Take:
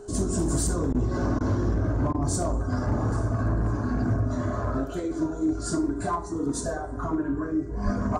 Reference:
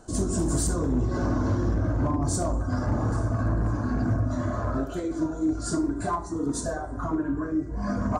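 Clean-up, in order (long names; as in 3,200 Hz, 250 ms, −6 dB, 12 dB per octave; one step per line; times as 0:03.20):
notch filter 410 Hz, Q 30
high-pass at the plosives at 0:07.84
repair the gap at 0:00.93/0:01.39/0:02.13, 14 ms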